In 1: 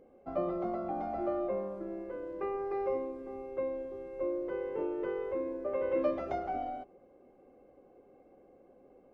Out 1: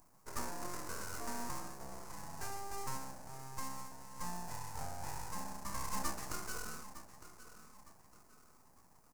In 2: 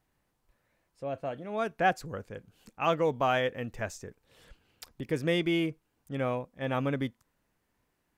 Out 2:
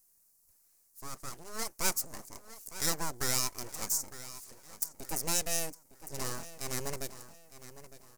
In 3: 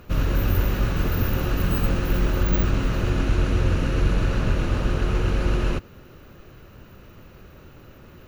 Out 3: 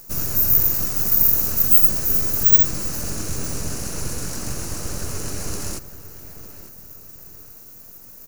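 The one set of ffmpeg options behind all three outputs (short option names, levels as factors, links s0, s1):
-filter_complex "[0:a]asplit=2[s0][s1];[s1]adelay=908,lowpass=f=3700:p=1,volume=0.2,asplit=2[s2][s3];[s3]adelay=908,lowpass=f=3700:p=1,volume=0.37,asplit=2[s4][s5];[s5]adelay=908,lowpass=f=3700:p=1,volume=0.37,asplit=2[s6][s7];[s7]adelay=908,lowpass=f=3700:p=1,volume=0.37[s8];[s0][s2][s4][s6][s8]amix=inputs=5:normalize=0,aeval=exprs='abs(val(0))':c=same,aexciter=amount=15.3:drive=5.5:freq=5100,volume=0.501"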